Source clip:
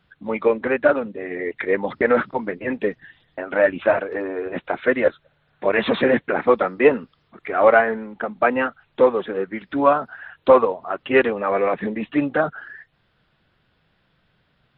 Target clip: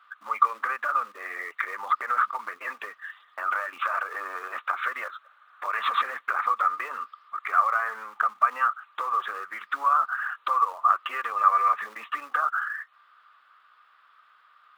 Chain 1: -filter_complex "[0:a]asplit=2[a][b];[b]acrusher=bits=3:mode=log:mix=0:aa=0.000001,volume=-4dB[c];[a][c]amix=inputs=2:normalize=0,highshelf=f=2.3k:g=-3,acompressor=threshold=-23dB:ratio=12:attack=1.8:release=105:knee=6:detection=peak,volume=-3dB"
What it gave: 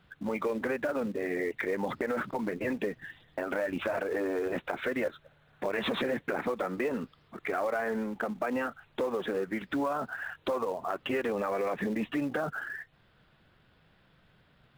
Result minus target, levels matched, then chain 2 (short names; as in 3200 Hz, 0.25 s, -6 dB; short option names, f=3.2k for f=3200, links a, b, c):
1000 Hz band -7.5 dB
-filter_complex "[0:a]asplit=2[a][b];[b]acrusher=bits=3:mode=log:mix=0:aa=0.000001,volume=-4dB[c];[a][c]amix=inputs=2:normalize=0,highshelf=f=2.3k:g=-3,acompressor=threshold=-23dB:ratio=12:attack=1.8:release=105:knee=6:detection=peak,highpass=f=1.2k:t=q:w=14,volume=-3dB"